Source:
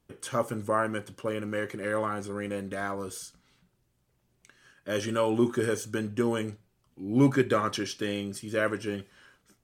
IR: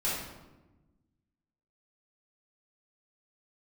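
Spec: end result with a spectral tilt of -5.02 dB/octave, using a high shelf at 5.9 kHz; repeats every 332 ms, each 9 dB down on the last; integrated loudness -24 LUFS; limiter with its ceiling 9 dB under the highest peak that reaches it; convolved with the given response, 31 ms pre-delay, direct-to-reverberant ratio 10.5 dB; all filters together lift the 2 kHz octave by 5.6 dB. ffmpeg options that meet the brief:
-filter_complex "[0:a]equalizer=f=2000:t=o:g=8,highshelf=f=5900:g=-3.5,alimiter=limit=0.119:level=0:latency=1,aecho=1:1:332|664|996|1328:0.355|0.124|0.0435|0.0152,asplit=2[s0][s1];[1:a]atrim=start_sample=2205,adelay=31[s2];[s1][s2]afir=irnorm=-1:irlink=0,volume=0.126[s3];[s0][s3]amix=inputs=2:normalize=0,volume=2.11"

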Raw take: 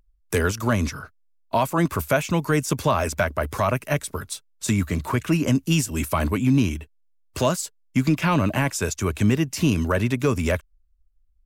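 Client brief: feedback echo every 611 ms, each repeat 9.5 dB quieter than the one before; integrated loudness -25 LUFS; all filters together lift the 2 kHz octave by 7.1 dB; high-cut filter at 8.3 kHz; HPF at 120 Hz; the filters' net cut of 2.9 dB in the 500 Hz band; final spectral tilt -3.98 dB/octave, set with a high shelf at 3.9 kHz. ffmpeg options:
-af "highpass=120,lowpass=8300,equalizer=f=500:t=o:g=-4.5,equalizer=f=2000:t=o:g=8,highshelf=f=3900:g=7,aecho=1:1:611|1222|1833|2444:0.335|0.111|0.0365|0.012,volume=0.75"

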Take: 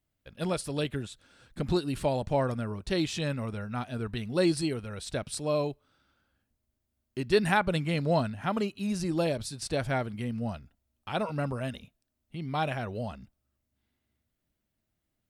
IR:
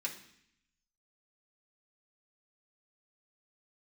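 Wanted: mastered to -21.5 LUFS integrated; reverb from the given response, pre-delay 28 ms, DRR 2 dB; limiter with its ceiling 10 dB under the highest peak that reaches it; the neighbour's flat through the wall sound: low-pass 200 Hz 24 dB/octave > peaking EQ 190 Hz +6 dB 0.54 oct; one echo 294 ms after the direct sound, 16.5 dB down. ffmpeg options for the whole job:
-filter_complex "[0:a]alimiter=limit=0.0944:level=0:latency=1,aecho=1:1:294:0.15,asplit=2[s0][s1];[1:a]atrim=start_sample=2205,adelay=28[s2];[s1][s2]afir=irnorm=-1:irlink=0,volume=0.668[s3];[s0][s3]amix=inputs=2:normalize=0,lowpass=f=200:w=0.5412,lowpass=f=200:w=1.3066,equalizer=f=190:t=o:w=0.54:g=6,volume=4.47"

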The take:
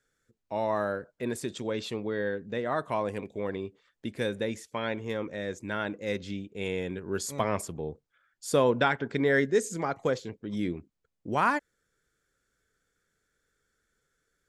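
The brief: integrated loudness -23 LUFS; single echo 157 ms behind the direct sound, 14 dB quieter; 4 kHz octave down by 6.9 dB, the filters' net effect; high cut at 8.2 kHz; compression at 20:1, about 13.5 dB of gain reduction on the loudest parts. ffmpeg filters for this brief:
-af "lowpass=8200,equalizer=f=4000:t=o:g=-8.5,acompressor=threshold=0.0251:ratio=20,aecho=1:1:157:0.2,volume=5.96"

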